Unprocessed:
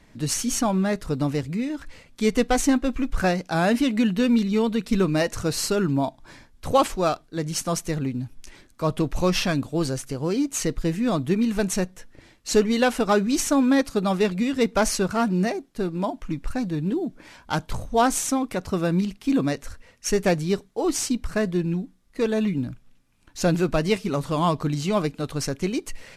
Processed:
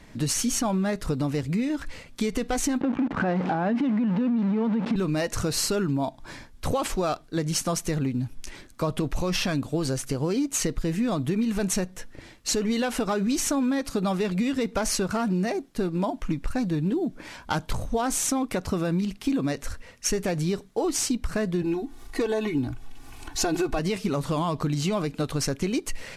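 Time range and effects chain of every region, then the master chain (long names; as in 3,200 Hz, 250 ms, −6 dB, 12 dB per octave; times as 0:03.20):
0:02.81–0:04.96: converter with a step at zero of −23.5 dBFS + band-pass filter 150–2,000 Hz + hollow resonant body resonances 230/840 Hz, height 7 dB, ringing for 20 ms
0:21.62–0:23.79: parametric band 870 Hz +10.5 dB 0.33 octaves + comb filter 2.7 ms, depth 93% + upward compression, threshold −32 dBFS
whole clip: brickwall limiter −16 dBFS; downward compressor 4 to 1, threshold −28 dBFS; level +5 dB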